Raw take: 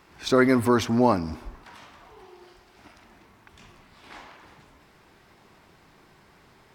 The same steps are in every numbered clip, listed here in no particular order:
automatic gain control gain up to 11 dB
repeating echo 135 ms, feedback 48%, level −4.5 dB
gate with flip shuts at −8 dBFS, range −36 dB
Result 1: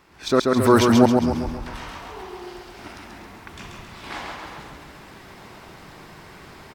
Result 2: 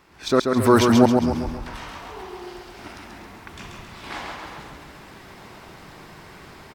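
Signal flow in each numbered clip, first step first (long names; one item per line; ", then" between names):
gate with flip, then repeating echo, then automatic gain control
gate with flip, then automatic gain control, then repeating echo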